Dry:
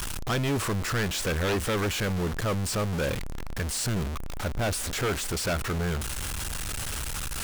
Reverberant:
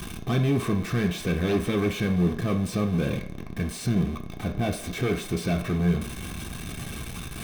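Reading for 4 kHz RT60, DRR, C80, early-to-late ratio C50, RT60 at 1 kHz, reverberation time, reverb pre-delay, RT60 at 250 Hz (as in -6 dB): 0.55 s, 3.5 dB, 14.0 dB, 10.0 dB, 0.70 s, 0.65 s, 3 ms, 0.35 s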